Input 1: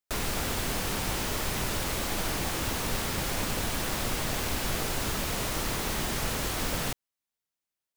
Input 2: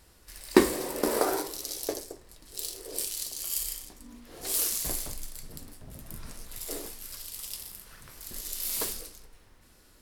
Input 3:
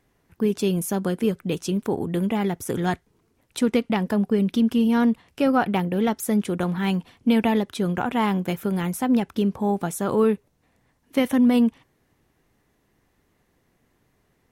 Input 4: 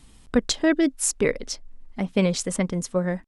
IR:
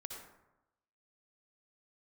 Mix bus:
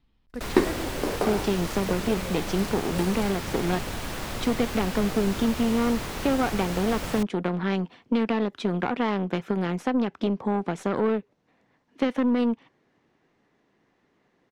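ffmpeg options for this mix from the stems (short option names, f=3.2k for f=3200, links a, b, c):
-filter_complex "[0:a]adelay=300,volume=-1dB[a];[1:a]highshelf=f=5.7k:g=-8,volume=-1dB[b];[2:a]aeval=exprs='0.422*(cos(1*acos(clip(val(0)/0.422,-1,1)))-cos(1*PI/2))+0.0596*(cos(4*acos(clip(val(0)/0.422,-1,1)))-cos(4*PI/2))+0.0188*(cos(8*acos(clip(val(0)/0.422,-1,1)))-cos(8*PI/2))':c=same,acrossover=split=150 6900:gain=0.141 1 0.0631[c][d][e];[c][d][e]amix=inputs=3:normalize=0,acompressor=threshold=-24dB:ratio=2.5,adelay=850,volume=1.5dB[f];[3:a]lowpass=f=4.5k:w=0.5412,lowpass=f=4.5k:w=1.3066,volume=-16dB,asplit=2[g][h];[h]apad=whole_len=441758[i];[b][i]sidechaingate=range=-38dB:threshold=-57dB:ratio=16:detection=peak[j];[a][j][f][g]amix=inputs=4:normalize=0,highshelf=f=5.2k:g=-7.5"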